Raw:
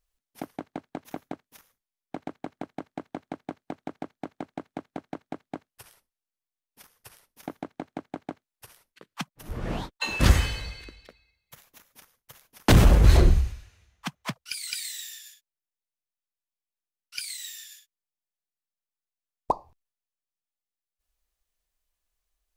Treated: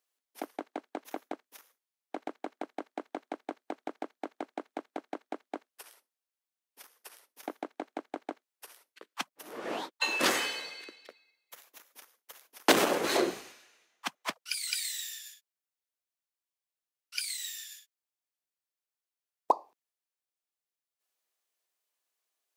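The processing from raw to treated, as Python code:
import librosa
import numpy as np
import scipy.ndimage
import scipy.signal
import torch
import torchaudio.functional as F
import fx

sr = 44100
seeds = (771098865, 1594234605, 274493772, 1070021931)

y = scipy.signal.sosfilt(scipy.signal.butter(4, 310.0, 'highpass', fs=sr, output='sos'), x)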